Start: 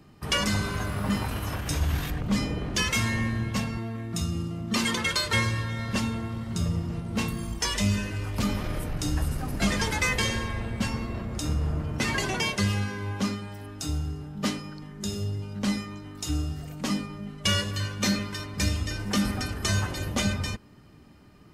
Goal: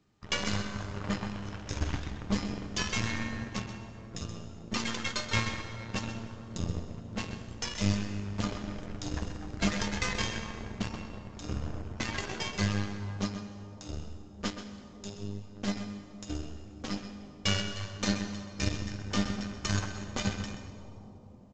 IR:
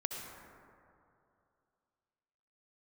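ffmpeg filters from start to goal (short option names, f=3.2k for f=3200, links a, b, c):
-filter_complex "[0:a]aeval=exprs='0.251*(cos(1*acos(clip(val(0)/0.251,-1,1)))-cos(1*PI/2))+0.0562*(cos(3*acos(clip(val(0)/0.251,-1,1)))-cos(3*PI/2))+0.01*(cos(6*acos(clip(val(0)/0.251,-1,1)))-cos(6*PI/2))+0.00794*(cos(7*acos(clip(val(0)/0.251,-1,1)))-cos(7*PI/2))':c=same,asplit=2[a][b];[b]adelay=128.3,volume=-10dB,highshelf=f=4k:g=-2.89[c];[a][c]amix=inputs=2:normalize=0,asplit=2[d][e];[1:a]atrim=start_sample=2205,asetrate=24255,aresample=44100,adelay=10[f];[e][f]afir=irnorm=-1:irlink=0,volume=-12dB[g];[d][g]amix=inputs=2:normalize=0" -ar 16000 -c:a pcm_mulaw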